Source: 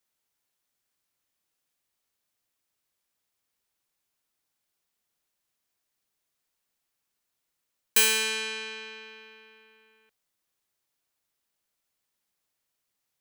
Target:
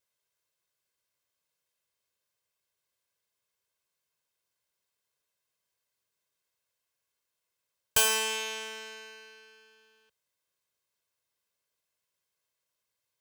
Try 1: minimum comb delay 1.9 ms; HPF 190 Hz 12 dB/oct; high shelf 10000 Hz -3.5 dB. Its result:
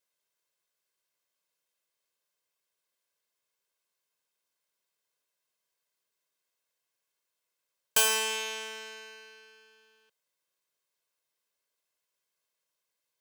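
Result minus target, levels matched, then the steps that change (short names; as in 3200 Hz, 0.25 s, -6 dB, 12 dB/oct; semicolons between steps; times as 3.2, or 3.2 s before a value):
125 Hz band -8.5 dB
change: HPF 71 Hz 12 dB/oct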